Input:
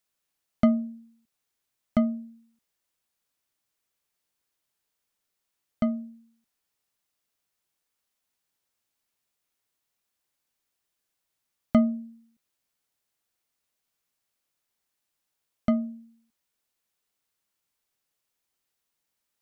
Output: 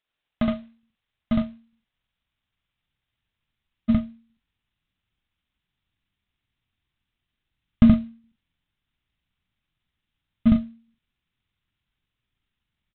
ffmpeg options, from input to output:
ffmpeg -i in.wav -filter_complex "[0:a]highshelf=frequency=2700:gain=9,bandreject=frequency=50:width_type=h:width=6,bandreject=frequency=100:width_type=h:width=6,bandreject=frequency=150:width_type=h:width=6,bandreject=frequency=200:width_type=h:width=6,asplit=2[link_01][link_02];[link_02]aecho=0:1:93.29|151.6:0.891|0.251[link_03];[link_01][link_03]amix=inputs=2:normalize=0,asoftclip=type=tanh:threshold=-12.5dB,atempo=1.5,aresample=8000,acrusher=bits=4:mode=log:mix=0:aa=0.000001,aresample=44100,asubboost=boost=12:cutoff=150,volume=-1dB" out.wav

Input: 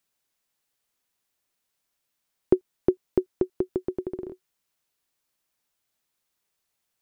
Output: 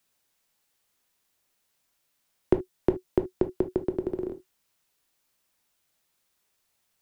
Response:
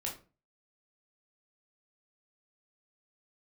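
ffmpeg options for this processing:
-filter_complex "[0:a]acrossover=split=170|3000[link_01][link_02][link_03];[link_02]acompressor=threshold=-30dB:ratio=2[link_04];[link_01][link_04][link_03]amix=inputs=3:normalize=0,asplit=2[link_05][link_06];[1:a]atrim=start_sample=2205,atrim=end_sample=3528[link_07];[link_06][link_07]afir=irnorm=-1:irlink=0,volume=-4.5dB[link_08];[link_05][link_08]amix=inputs=2:normalize=0,volume=1.5dB"

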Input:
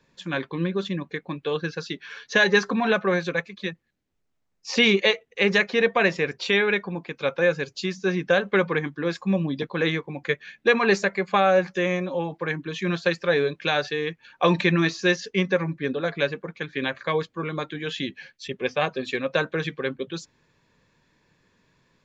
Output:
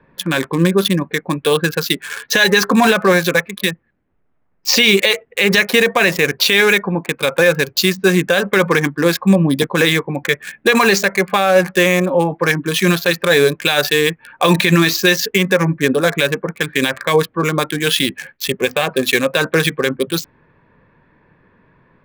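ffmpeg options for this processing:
ffmpeg -i in.wav -filter_complex "[0:a]lowpass=6000,acrossover=split=1800[link_01][link_02];[link_02]aeval=exprs='sgn(val(0))*max(abs(val(0))-0.00708,0)':channel_layout=same[link_03];[link_01][link_03]amix=inputs=2:normalize=0,crystalizer=i=4.5:c=0,alimiter=level_in=13dB:limit=-1dB:release=50:level=0:latency=1,volume=-1dB" out.wav

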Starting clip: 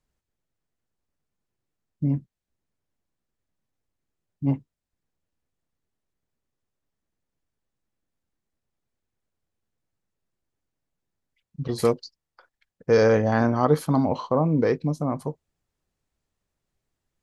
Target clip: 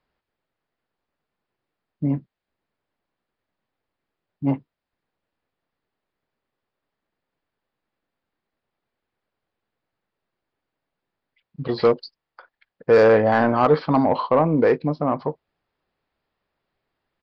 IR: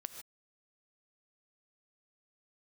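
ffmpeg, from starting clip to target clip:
-filter_complex "[0:a]aresample=11025,aresample=44100,asplit=2[link_01][link_02];[link_02]highpass=frequency=720:poles=1,volume=17dB,asoftclip=type=tanh:threshold=-4dB[link_03];[link_01][link_03]amix=inputs=2:normalize=0,lowpass=frequency=1700:poles=1,volume=-6dB"

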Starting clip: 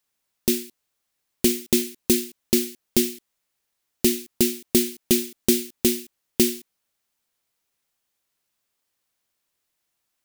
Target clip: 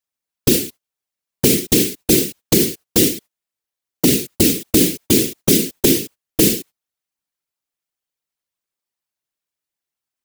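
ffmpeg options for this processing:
ffmpeg -i in.wav -af "agate=range=-22dB:threshold=-45dB:ratio=16:detection=peak,afftfilt=real='hypot(re,im)*cos(2*PI*random(0))':imag='hypot(re,im)*sin(2*PI*random(1))':win_size=512:overlap=0.75,alimiter=level_in=20dB:limit=-1dB:release=50:level=0:latency=1,volume=-1dB" out.wav

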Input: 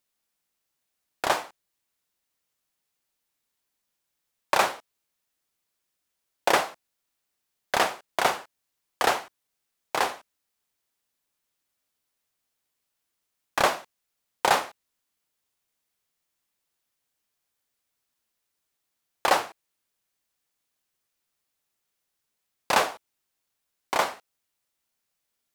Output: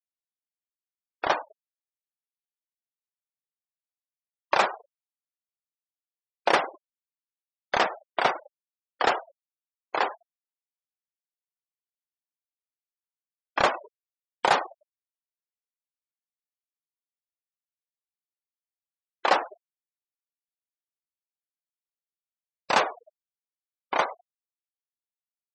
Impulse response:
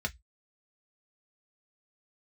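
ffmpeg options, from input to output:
-filter_complex "[0:a]asplit=6[link_01][link_02][link_03][link_04][link_05][link_06];[link_02]adelay=103,afreqshift=-75,volume=-18dB[link_07];[link_03]adelay=206,afreqshift=-150,volume=-23dB[link_08];[link_04]adelay=309,afreqshift=-225,volume=-28.1dB[link_09];[link_05]adelay=412,afreqshift=-300,volume=-33.1dB[link_10];[link_06]adelay=515,afreqshift=-375,volume=-38.1dB[link_11];[link_01][link_07][link_08][link_09][link_10][link_11]amix=inputs=6:normalize=0,afftfilt=real='re*gte(hypot(re,im),0.0447)':imag='im*gte(hypot(re,im),0.0447)':win_size=1024:overlap=0.75"

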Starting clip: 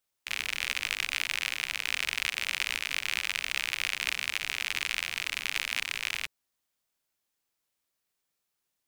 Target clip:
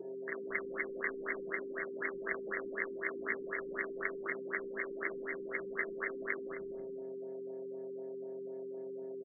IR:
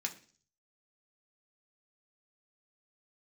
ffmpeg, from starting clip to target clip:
-filter_complex "[0:a]asplit=2[link_01][link_02];[link_02]adelay=90,lowpass=frequency=950:poles=1,volume=-5.5dB,asplit=2[link_03][link_04];[link_04]adelay=90,lowpass=frequency=950:poles=1,volume=0.53,asplit=2[link_05][link_06];[link_06]adelay=90,lowpass=frequency=950:poles=1,volume=0.53,asplit=2[link_07][link_08];[link_08]adelay=90,lowpass=frequency=950:poles=1,volume=0.53,asplit=2[link_09][link_10];[link_10]adelay=90,lowpass=frequency=950:poles=1,volume=0.53,asplit=2[link_11][link_12];[link_12]adelay=90,lowpass=frequency=950:poles=1,volume=0.53,asplit=2[link_13][link_14];[link_14]adelay=90,lowpass=frequency=950:poles=1,volume=0.53[link_15];[link_01][link_03][link_05][link_07][link_09][link_11][link_13][link_15]amix=inputs=8:normalize=0,areverse,acompressor=mode=upward:threshold=-37dB:ratio=2.5,areverse,aeval=exprs='val(0)+0.0112*sin(2*PI*410*n/s)':channel_layout=same,acrossover=split=500|5400[link_16][link_17][link_18];[link_18]acrusher=bits=5:dc=4:mix=0:aa=0.000001[link_19];[link_16][link_17][link_19]amix=inputs=3:normalize=0,afwtdn=0.0158[link_20];[1:a]atrim=start_sample=2205,asetrate=70560,aresample=44100[link_21];[link_20][link_21]afir=irnorm=-1:irlink=0,asetrate=42336,aresample=44100,afftfilt=real='re*lt(b*sr/1024,450*pow(2200/450,0.5+0.5*sin(2*PI*4*pts/sr)))':imag='im*lt(b*sr/1024,450*pow(2200/450,0.5+0.5*sin(2*PI*4*pts/sr)))':win_size=1024:overlap=0.75,volume=9dB"

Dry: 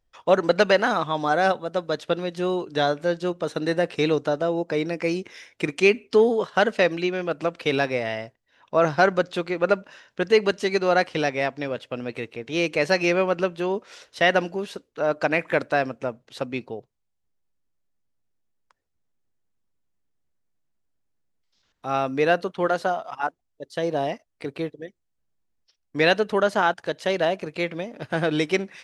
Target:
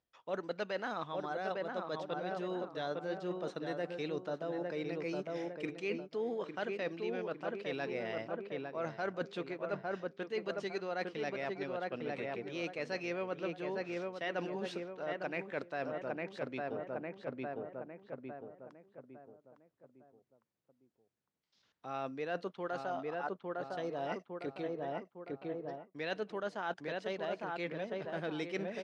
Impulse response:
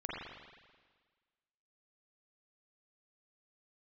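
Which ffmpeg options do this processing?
-filter_complex "[0:a]asplit=2[link_01][link_02];[link_02]adelay=856,lowpass=frequency=1600:poles=1,volume=-5dB,asplit=2[link_03][link_04];[link_04]adelay=856,lowpass=frequency=1600:poles=1,volume=0.41,asplit=2[link_05][link_06];[link_06]adelay=856,lowpass=frequency=1600:poles=1,volume=0.41,asplit=2[link_07][link_08];[link_08]adelay=856,lowpass=frequency=1600:poles=1,volume=0.41,asplit=2[link_09][link_10];[link_10]adelay=856,lowpass=frequency=1600:poles=1,volume=0.41[link_11];[link_01][link_03][link_05][link_07][link_09][link_11]amix=inputs=6:normalize=0,areverse,acompressor=threshold=-33dB:ratio=5,areverse,highpass=110,lowpass=6100,volume=-3.5dB"

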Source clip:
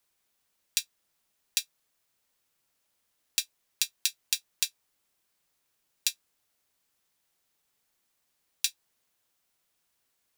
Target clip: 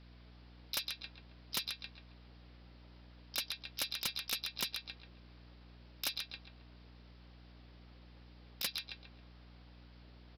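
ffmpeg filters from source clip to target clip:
ffmpeg -i in.wav -filter_complex "[0:a]highpass=frequency=64:width=0.5412,highpass=frequency=64:width=1.3066,acrossover=split=440[link_01][link_02];[link_02]acompressor=threshold=-26dB:ratio=8[link_03];[link_01][link_03]amix=inputs=2:normalize=0,asplit=2[link_04][link_05];[link_05]adelay=136,lowpass=frequency=1400:poles=1,volume=-3dB,asplit=2[link_06][link_07];[link_07]adelay=136,lowpass=frequency=1400:poles=1,volume=0.54,asplit=2[link_08][link_09];[link_09]adelay=136,lowpass=frequency=1400:poles=1,volume=0.54,asplit=2[link_10][link_11];[link_11]adelay=136,lowpass=frequency=1400:poles=1,volume=0.54,asplit=2[link_12][link_13];[link_13]adelay=136,lowpass=frequency=1400:poles=1,volume=0.54,asplit=2[link_14][link_15];[link_15]adelay=136,lowpass=frequency=1400:poles=1,volume=0.54,asplit=2[link_16][link_17];[link_17]adelay=136,lowpass=frequency=1400:poles=1,volume=0.54[link_18];[link_04][link_06][link_08][link_10][link_12][link_14][link_16][link_18]amix=inputs=8:normalize=0,acrossover=split=560|3500[link_19][link_20][link_21];[link_19]acontrast=77[link_22];[link_22][link_20][link_21]amix=inputs=3:normalize=0,asplit=3[link_23][link_24][link_25];[link_24]asetrate=66075,aresample=44100,atempo=0.66742,volume=-1dB[link_26];[link_25]asetrate=88200,aresample=44100,atempo=0.5,volume=-15dB[link_27];[link_23][link_26][link_27]amix=inputs=3:normalize=0,aresample=11025,aeval=exprs='0.0473*(abs(mod(val(0)/0.0473+3,4)-2)-1)':channel_layout=same,aresample=44100,aeval=exprs='0.0794*(cos(1*acos(clip(val(0)/0.0794,-1,1)))-cos(1*PI/2))+0.0355*(cos(7*acos(clip(val(0)/0.0794,-1,1)))-cos(7*PI/2))':channel_layout=same,aeval=exprs='val(0)+0.000794*(sin(2*PI*60*n/s)+sin(2*PI*2*60*n/s)/2+sin(2*PI*3*60*n/s)/3+sin(2*PI*4*60*n/s)/4+sin(2*PI*5*60*n/s)/5)':channel_layout=same,alimiter=level_in=4dB:limit=-24dB:level=0:latency=1:release=127,volume=-4dB,volume=6dB" out.wav

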